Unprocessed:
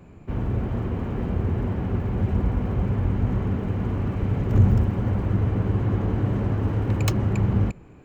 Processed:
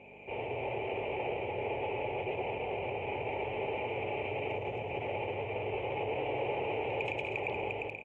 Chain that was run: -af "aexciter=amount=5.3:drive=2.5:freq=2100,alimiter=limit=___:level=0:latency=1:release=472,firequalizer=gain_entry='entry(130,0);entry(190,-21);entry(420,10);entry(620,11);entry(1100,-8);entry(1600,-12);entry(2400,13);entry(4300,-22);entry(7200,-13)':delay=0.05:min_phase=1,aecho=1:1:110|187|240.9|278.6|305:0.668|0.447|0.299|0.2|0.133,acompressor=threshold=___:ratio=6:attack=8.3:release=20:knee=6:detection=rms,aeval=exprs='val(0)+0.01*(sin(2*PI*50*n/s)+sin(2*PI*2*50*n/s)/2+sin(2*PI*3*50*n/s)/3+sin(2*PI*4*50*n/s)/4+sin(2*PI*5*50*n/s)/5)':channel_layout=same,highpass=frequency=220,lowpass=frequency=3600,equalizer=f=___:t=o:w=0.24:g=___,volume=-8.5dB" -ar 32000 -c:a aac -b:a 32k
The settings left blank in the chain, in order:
-11dB, -22dB, 860, 14.5